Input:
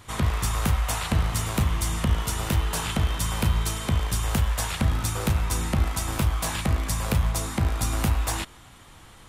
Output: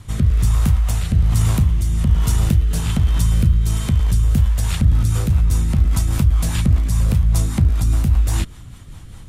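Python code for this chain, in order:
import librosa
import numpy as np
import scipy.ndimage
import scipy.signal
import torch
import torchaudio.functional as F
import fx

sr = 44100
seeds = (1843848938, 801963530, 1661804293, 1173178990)

p1 = fx.bass_treble(x, sr, bass_db=15, treble_db=4)
p2 = fx.over_compress(p1, sr, threshold_db=-16.0, ratio=-1.0)
p3 = p1 + (p2 * librosa.db_to_amplitude(-0.5))
p4 = fx.rotary_switch(p3, sr, hz=1.2, then_hz=5.0, switch_at_s=4.0)
y = p4 * librosa.db_to_amplitude(-6.5)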